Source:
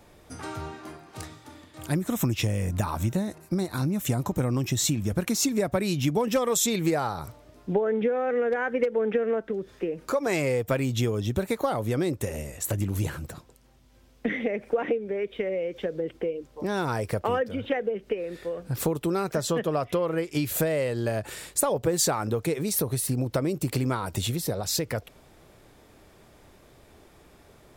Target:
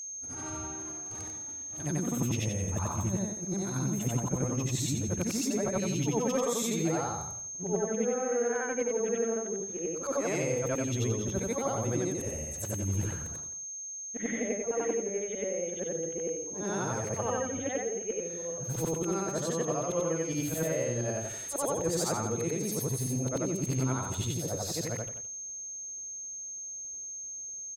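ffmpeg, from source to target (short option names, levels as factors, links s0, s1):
-filter_complex "[0:a]afftfilt=real='re':imag='-im':win_size=8192:overlap=0.75,firequalizer=gain_entry='entry(110,0);entry(2200,-3);entry(14000,-7)':delay=0.05:min_phase=1,agate=range=0.0224:threshold=0.00355:ratio=3:detection=peak,aeval=exprs='val(0)+0.0126*sin(2*PI*6400*n/s)':c=same,asplit=2[s0][s1];[s1]adelay=169.1,volume=0.178,highshelf=f=4000:g=-3.8[s2];[s0][s2]amix=inputs=2:normalize=0"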